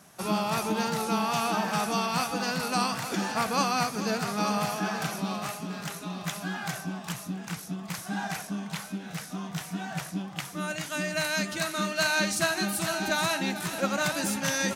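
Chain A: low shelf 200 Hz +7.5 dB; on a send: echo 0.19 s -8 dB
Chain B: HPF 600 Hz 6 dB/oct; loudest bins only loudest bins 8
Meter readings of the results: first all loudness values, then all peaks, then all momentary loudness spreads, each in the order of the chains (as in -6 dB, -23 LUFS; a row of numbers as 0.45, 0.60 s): -27.5, -34.5 LUFS; -10.5, -18.5 dBFS; 8, 15 LU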